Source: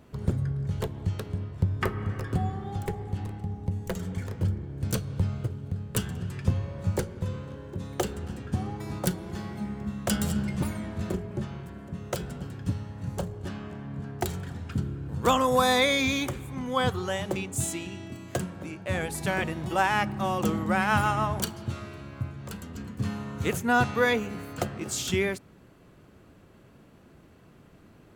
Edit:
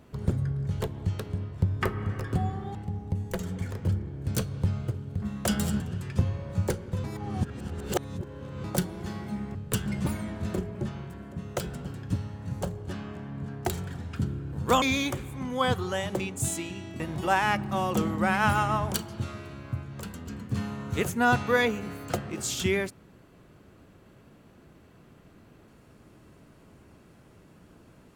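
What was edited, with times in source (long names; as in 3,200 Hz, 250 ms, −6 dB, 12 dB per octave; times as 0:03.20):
0:02.75–0:03.31: remove
0:05.78–0:06.09: swap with 0:09.84–0:10.42
0:07.33–0:08.93: reverse
0:15.38–0:15.98: remove
0:18.16–0:19.48: remove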